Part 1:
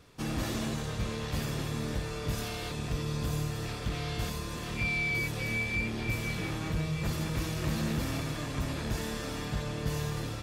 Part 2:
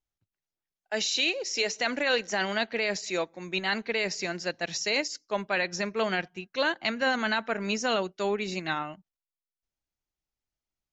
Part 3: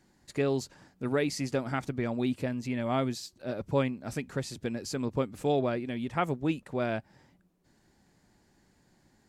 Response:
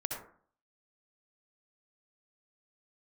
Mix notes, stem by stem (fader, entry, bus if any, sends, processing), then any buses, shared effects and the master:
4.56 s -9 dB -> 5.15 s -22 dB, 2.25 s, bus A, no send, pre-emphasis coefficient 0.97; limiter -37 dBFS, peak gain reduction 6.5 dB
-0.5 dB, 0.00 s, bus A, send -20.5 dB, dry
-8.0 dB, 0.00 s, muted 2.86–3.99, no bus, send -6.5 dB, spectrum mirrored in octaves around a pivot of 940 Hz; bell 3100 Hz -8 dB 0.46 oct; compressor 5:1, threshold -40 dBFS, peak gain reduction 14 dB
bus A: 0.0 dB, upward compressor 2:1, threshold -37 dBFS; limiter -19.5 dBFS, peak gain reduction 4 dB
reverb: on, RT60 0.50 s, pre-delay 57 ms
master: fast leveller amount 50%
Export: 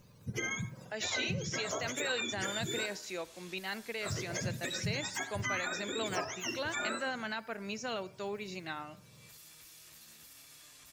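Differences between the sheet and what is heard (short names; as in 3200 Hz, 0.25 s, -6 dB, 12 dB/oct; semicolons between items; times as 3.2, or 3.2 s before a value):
stem 2 -0.5 dB -> -11.5 dB; stem 3 -8.0 dB -> +2.0 dB; master: missing fast leveller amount 50%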